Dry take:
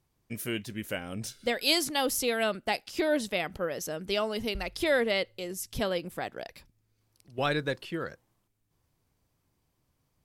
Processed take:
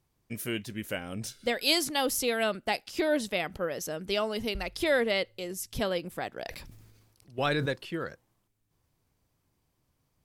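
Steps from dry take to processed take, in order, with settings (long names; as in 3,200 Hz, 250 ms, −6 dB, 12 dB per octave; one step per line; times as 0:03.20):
0:06.33–0:07.66: level that may fall only so fast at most 42 dB per second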